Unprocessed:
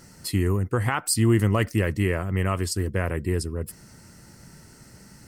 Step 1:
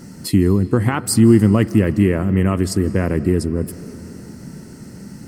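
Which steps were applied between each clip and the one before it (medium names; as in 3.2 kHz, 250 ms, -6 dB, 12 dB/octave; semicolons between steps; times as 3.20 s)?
peaking EQ 230 Hz +13 dB 1.8 oct; in parallel at +1.5 dB: compression, threshold -21 dBFS, peak gain reduction 14.5 dB; on the sum: algorithmic reverb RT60 4.3 s, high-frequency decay 0.7×, pre-delay 120 ms, DRR 16 dB; trim -2.5 dB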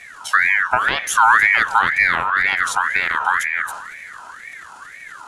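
low-pass 10 kHz 24 dB/octave; transient shaper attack +2 dB, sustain +6 dB; ring modulator with a swept carrier 1.6 kHz, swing 30%, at 2 Hz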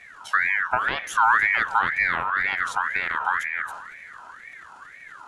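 treble shelf 4.7 kHz -11.5 dB; trim -5 dB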